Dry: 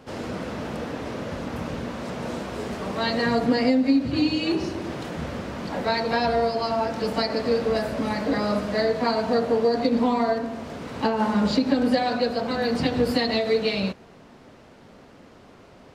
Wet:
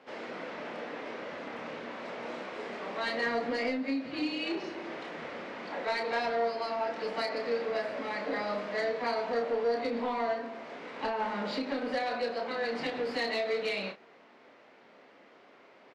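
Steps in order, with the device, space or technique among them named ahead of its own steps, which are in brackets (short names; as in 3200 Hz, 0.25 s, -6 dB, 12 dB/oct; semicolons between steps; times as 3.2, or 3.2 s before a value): intercom (BPF 380–4100 Hz; bell 2100 Hz +5.5 dB 0.51 oct; soft clip -17.5 dBFS, distortion -18 dB; doubler 30 ms -6.5 dB); gain -6.5 dB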